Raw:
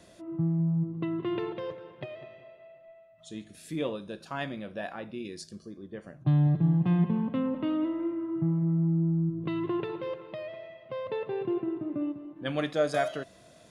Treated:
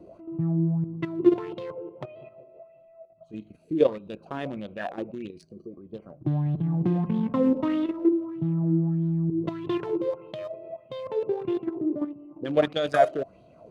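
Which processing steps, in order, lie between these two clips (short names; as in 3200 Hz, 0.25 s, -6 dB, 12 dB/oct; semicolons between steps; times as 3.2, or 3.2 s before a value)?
Wiener smoothing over 25 samples; level quantiser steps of 10 dB; LFO bell 1.6 Hz 330–3600 Hz +13 dB; gain +5 dB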